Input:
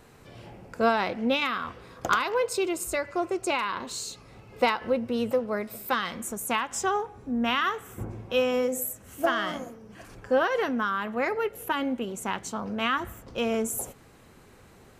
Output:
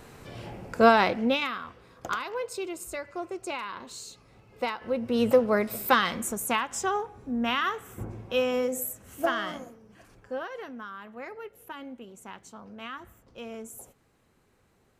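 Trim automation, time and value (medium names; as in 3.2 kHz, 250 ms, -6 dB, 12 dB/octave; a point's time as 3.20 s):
1.04 s +5 dB
1.68 s -7 dB
4.77 s -7 dB
5.29 s +5.5 dB
5.94 s +5.5 dB
6.76 s -1.5 dB
9.26 s -1.5 dB
10.58 s -13 dB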